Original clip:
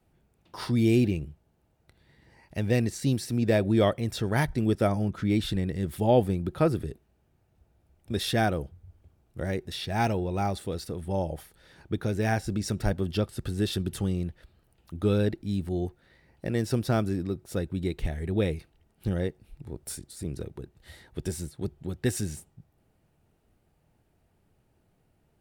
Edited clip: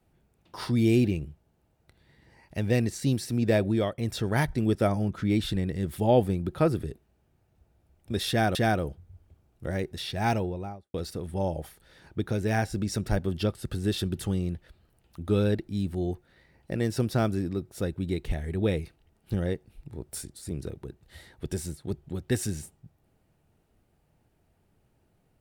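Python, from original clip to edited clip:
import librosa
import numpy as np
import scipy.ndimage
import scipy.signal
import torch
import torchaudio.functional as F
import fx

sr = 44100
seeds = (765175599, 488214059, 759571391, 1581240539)

y = fx.studio_fade_out(x, sr, start_s=10.04, length_s=0.64)
y = fx.edit(y, sr, fx.fade_out_to(start_s=3.63, length_s=0.35, floor_db=-12.5),
    fx.repeat(start_s=8.29, length_s=0.26, count=2), tone=tone)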